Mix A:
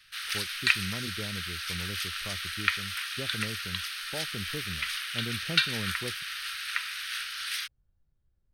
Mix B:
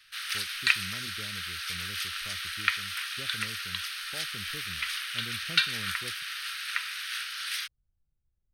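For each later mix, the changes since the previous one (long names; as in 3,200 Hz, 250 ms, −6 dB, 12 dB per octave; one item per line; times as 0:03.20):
speech −9.0 dB
master: add low-shelf EQ 130 Hz +4 dB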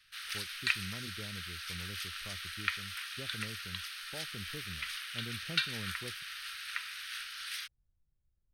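background −7.0 dB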